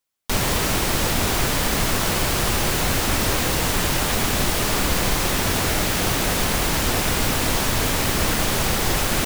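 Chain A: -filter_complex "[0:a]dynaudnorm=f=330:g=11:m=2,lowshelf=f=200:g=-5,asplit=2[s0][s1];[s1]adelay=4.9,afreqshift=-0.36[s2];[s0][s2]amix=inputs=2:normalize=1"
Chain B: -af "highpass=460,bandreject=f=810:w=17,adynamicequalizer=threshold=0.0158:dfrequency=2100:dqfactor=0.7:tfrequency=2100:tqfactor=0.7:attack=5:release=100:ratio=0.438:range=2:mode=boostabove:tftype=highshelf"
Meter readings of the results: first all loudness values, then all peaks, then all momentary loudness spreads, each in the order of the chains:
-20.5 LUFS, -18.5 LUFS; -6.5 dBFS, -7.5 dBFS; 5 LU, 0 LU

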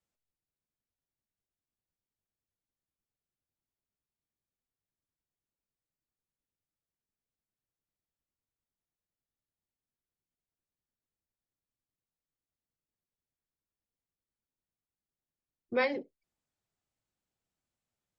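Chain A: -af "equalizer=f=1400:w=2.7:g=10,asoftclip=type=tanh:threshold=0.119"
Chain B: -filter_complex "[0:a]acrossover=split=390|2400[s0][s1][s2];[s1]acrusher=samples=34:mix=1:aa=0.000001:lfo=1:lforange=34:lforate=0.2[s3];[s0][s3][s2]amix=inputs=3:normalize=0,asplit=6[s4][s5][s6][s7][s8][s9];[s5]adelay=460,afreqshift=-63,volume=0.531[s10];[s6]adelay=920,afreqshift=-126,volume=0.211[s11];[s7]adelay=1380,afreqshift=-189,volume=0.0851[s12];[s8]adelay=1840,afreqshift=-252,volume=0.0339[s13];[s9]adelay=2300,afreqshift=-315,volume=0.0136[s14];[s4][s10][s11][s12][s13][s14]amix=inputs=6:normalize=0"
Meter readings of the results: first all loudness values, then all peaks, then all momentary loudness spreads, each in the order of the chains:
-32.5 LUFS, -37.5 LUFS; -19.0 dBFS, -17.5 dBFS; 8 LU, 22 LU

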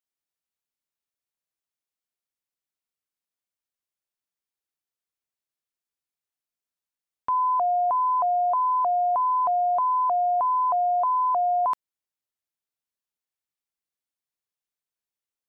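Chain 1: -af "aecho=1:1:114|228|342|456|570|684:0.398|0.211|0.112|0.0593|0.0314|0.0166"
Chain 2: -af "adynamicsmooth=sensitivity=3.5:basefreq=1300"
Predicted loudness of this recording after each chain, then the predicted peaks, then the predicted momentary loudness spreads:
-21.0 LUFS, -23.0 LUFS; -15.0 dBFS, -20.0 dBFS; 5 LU, 3 LU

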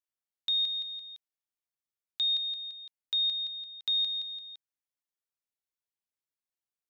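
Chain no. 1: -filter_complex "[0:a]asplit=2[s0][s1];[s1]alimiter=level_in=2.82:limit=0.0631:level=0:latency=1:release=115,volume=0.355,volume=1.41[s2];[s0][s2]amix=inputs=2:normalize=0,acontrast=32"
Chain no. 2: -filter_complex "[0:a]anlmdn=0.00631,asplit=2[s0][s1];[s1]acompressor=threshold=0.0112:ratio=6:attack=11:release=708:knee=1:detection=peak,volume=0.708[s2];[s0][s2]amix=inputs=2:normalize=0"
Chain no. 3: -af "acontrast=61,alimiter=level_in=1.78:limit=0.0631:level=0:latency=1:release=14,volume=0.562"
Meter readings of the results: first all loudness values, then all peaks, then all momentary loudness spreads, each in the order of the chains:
-20.0 LUFS, -28.0 LUFS, -31.0 LUFS; -15.5 dBFS, -19.5 dBFS, -29.0 dBFS; 15 LU, 17 LU, 11 LU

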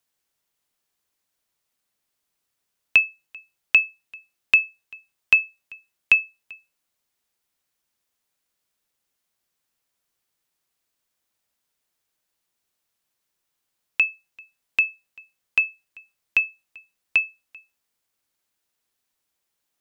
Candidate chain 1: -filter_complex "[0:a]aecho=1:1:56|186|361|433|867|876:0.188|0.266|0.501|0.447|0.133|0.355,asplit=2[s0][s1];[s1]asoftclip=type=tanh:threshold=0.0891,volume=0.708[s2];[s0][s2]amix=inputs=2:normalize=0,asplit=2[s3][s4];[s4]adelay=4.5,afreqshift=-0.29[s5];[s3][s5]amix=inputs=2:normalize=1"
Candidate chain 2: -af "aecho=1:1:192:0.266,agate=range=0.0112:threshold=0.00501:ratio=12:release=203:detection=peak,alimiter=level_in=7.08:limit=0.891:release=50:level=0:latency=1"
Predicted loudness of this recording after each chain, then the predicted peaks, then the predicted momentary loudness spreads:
-22.0 LUFS, -11.0 LUFS; -4.5 dBFS, -1.0 dBFS; 14 LU, 19 LU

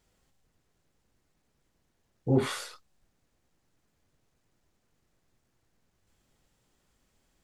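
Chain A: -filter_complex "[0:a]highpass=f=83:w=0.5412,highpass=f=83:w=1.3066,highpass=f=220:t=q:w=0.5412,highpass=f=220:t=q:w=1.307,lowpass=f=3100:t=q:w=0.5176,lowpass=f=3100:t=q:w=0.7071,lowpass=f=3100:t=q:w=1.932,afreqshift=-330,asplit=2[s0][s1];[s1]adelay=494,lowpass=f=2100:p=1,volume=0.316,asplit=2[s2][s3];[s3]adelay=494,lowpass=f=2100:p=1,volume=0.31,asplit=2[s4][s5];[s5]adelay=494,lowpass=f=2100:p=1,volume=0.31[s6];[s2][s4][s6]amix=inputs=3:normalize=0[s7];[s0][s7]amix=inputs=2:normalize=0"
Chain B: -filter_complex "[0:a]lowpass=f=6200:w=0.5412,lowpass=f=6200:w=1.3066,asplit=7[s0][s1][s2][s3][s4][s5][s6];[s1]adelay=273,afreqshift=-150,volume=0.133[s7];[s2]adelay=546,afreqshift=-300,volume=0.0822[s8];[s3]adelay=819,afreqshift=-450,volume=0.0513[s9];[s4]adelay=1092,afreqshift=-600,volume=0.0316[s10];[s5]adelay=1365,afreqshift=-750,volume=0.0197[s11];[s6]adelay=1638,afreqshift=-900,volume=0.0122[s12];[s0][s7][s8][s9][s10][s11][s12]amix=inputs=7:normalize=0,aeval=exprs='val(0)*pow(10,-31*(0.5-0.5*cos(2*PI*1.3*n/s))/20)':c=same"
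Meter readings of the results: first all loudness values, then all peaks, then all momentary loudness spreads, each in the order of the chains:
-34.0 LUFS, -31.0 LUFS; -15.0 dBFS, -13.5 dBFS; 20 LU, 14 LU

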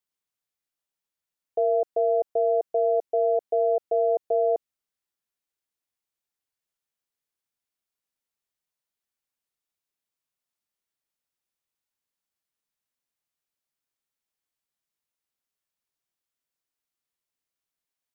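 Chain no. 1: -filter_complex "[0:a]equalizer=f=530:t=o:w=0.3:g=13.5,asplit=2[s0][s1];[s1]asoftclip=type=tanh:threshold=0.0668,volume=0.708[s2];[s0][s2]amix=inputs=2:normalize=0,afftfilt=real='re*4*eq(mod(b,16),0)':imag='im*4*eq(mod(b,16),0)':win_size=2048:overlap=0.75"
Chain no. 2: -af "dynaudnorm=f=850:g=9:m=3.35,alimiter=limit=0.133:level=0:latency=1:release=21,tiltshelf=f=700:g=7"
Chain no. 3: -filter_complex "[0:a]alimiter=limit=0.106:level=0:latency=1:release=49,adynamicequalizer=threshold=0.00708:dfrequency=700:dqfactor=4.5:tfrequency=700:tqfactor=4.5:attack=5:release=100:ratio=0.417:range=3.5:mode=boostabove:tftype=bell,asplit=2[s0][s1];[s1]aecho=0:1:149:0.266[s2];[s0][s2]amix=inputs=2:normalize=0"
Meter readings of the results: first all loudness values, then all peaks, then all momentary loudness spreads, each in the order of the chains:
-22.0 LUFS, -24.5 LUFS, -24.0 LUFS; -14.0 dBFS, -15.5 dBFS, -15.5 dBFS; 2 LU, 2 LU, 3 LU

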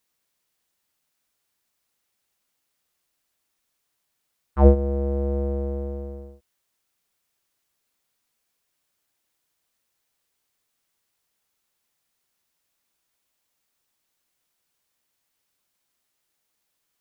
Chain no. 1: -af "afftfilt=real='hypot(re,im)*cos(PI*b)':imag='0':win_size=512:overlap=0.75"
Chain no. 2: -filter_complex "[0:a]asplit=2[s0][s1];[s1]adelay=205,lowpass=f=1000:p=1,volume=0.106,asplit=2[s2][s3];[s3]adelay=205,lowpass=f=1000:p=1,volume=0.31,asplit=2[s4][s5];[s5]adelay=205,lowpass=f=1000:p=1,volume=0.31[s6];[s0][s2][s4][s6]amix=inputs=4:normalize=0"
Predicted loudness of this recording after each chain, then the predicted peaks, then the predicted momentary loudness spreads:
-30.0 LUFS, -23.0 LUFS; -6.0 dBFS, -2.5 dBFS; 18 LU, 18 LU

